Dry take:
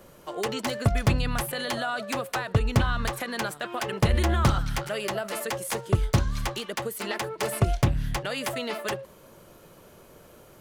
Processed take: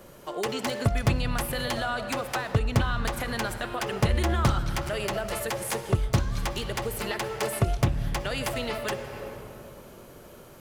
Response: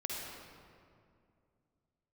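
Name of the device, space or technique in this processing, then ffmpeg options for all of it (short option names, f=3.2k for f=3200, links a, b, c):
ducked reverb: -filter_complex "[0:a]asplit=3[a][b][c];[1:a]atrim=start_sample=2205[d];[b][d]afir=irnorm=-1:irlink=0[e];[c]apad=whole_len=467686[f];[e][f]sidechaincompress=threshold=-34dB:ratio=4:attack=7:release=390,volume=-1dB[g];[a][g]amix=inputs=2:normalize=0,volume=-2.5dB"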